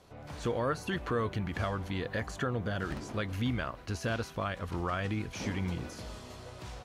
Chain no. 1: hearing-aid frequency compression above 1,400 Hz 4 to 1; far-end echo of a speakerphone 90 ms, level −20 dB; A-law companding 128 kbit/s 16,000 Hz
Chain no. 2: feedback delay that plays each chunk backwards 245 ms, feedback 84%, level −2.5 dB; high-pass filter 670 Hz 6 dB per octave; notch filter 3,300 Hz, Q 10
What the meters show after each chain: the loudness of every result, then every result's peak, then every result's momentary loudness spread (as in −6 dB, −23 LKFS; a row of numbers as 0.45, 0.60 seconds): −34.5, −35.5 LKFS; −20.0, −20.0 dBFS; 10, 5 LU